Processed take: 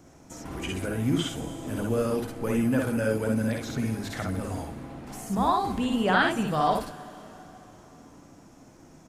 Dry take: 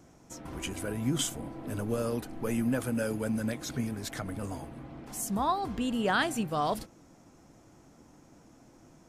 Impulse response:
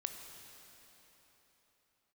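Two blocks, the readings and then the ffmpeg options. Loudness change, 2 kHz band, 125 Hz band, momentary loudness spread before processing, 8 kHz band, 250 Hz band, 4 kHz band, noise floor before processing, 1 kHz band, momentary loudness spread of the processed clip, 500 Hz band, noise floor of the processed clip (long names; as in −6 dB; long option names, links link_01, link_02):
+5.0 dB, +5.5 dB, +5.0 dB, 13 LU, −3.5 dB, +4.5 dB, +2.5 dB, −58 dBFS, +5.5 dB, 16 LU, +5.5 dB, −53 dBFS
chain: -filter_complex "[0:a]aecho=1:1:53|64:0.501|0.596,asplit=2[link_01][link_02];[1:a]atrim=start_sample=2205[link_03];[link_02][link_03]afir=irnorm=-1:irlink=0,volume=-6dB[link_04];[link_01][link_04]amix=inputs=2:normalize=0,acrossover=split=3600[link_05][link_06];[link_06]acompressor=threshold=-43dB:ratio=4:attack=1:release=60[link_07];[link_05][link_07]amix=inputs=2:normalize=0"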